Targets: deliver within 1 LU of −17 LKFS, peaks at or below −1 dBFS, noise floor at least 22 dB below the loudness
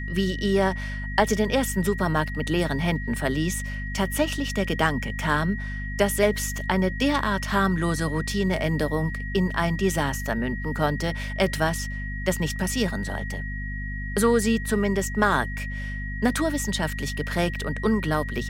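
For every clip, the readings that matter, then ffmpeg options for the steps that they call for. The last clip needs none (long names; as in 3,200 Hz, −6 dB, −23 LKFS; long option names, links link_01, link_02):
mains hum 50 Hz; hum harmonics up to 250 Hz; level of the hum −29 dBFS; interfering tone 1,900 Hz; level of the tone −35 dBFS; integrated loudness −25.0 LKFS; sample peak −6.0 dBFS; target loudness −17.0 LKFS
→ -af "bandreject=frequency=50:width_type=h:width=4,bandreject=frequency=100:width_type=h:width=4,bandreject=frequency=150:width_type=h:width=4,bandreject=frequency=200:width_type=h:width=4,bandreject=frequency=250:width_type=h:width=4"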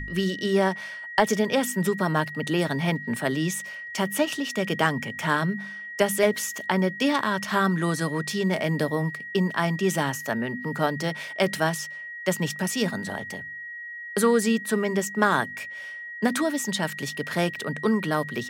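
mains hum none found; interfering tone 1,900 Hz; level of the tone −35 dBFS
→ -af "bandreject=frequency=1900:width=30"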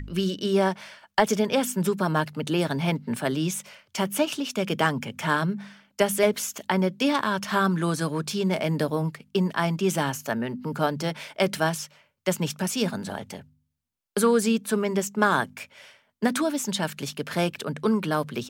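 interfering tone none found; integrated loudness −26.0 LKFS; sample peak −7.0 dBFS; target loudness −17.0 LKFS
→ -af "volume=9dB,alimiter=limit=-1dB:level=0:latency=1"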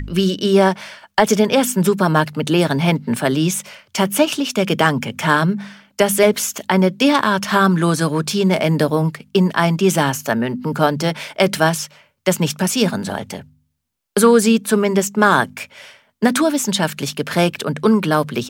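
integrated loudness −17.0 LKFS; sample peak −1.0 dBFS; background noise floor −64 dBFS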